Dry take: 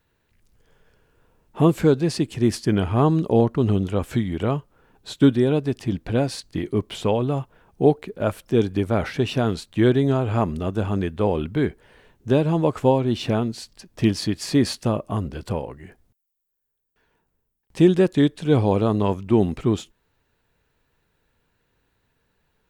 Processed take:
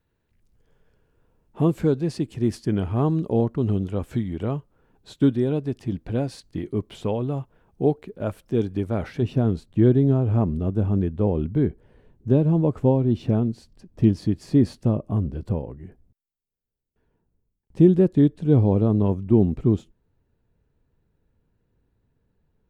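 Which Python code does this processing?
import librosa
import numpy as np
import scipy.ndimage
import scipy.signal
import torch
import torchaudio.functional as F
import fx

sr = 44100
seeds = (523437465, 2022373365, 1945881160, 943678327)

y = fx.tilt_shelf(x, sr, db=fx.steps((0.0, 4.0), (9.21, 10.0)), hz=670.0)
y = y * librosa.db_to_amplitude(-6.0)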